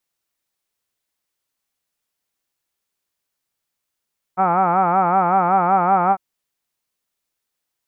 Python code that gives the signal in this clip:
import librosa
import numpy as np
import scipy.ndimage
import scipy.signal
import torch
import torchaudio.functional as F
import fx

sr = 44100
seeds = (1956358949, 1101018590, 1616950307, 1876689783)

y = fx.formant_vowel(sr, seeds[0], length_s=1.8, hz=180.0, glide_st=0.5, vibrato_hz=5.3, vibrato_st=1.1, f1_hz=800.0, f2_hz=1300.0, f3_hz=2300.0)